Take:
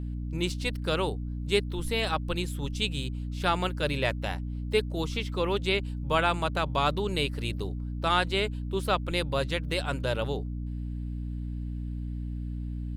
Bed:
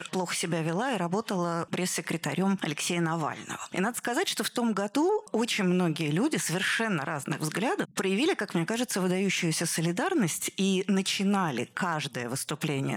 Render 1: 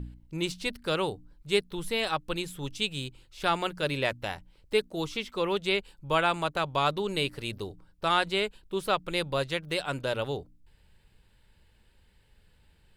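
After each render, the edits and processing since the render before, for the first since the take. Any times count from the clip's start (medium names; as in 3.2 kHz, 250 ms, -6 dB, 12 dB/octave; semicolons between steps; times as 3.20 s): de-hum 60 Hz, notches 5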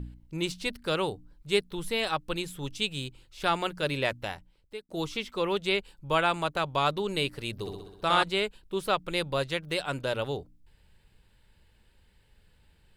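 4.20–4.89 s: fade out; 7.52–8.23 s: flutter echo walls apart 11 m, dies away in 1 s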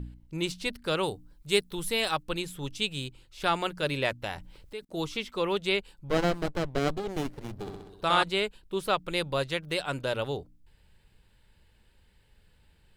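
1.03–2.23 s: treble shelf 5.6 kHz +8.5 dB; 4.31–4.85 s: level flattener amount 50%; 6.08–7.90 s: sliding maximum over 33 samples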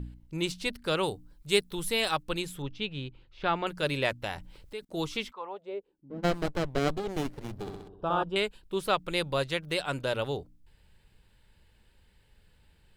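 2.62–3.67 s: distance through air 270 m; 5.31–6.23 s: band-pass filter 1.1 kHz -> 200 Hz, Q 4.2; 7.88–8.36 s: boxcar filter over 21 samples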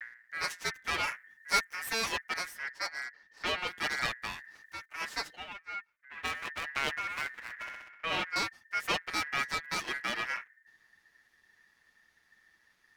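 comb filter that takes the minimum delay 7.6 ms; ring modulator 1.8 kHz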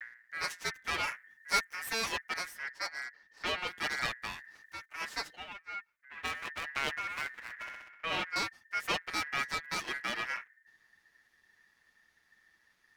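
trim -1.5 dB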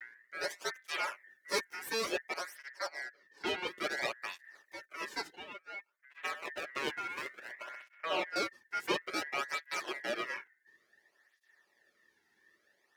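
small resonant body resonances 390/560 Hz, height 11 dB, ringing for 30 ms; cancelling through-zero flanger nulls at 0.57 Hz, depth 1.8 ms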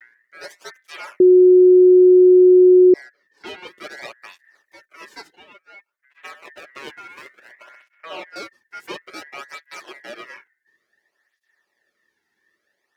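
1.20–2.94 s: bleep 365 Hz -6.5 dBFS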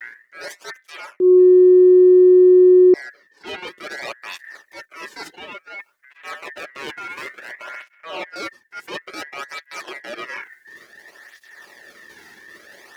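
reverse; upward compressor, threshold -20 dBFS; reverse; transient shaper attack -8 dB, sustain -4 dB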